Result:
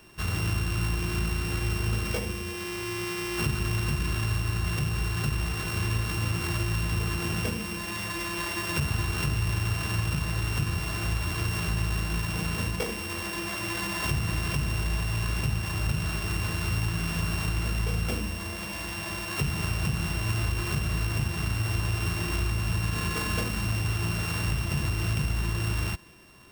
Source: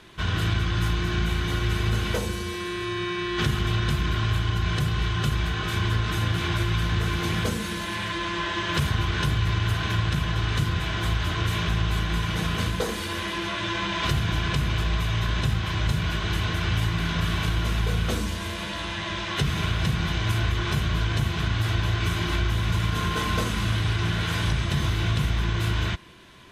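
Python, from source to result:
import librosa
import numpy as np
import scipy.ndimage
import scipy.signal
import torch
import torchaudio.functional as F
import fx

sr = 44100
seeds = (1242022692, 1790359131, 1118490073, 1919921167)

y = np.r_[np.sort(x[:len(x) // 16 * 16].reshape(-1, 16), axis=1).ravel(), x[len(x) // 16 * 16:]]
y = y * 10.0 ** (-3.5 / 20.0)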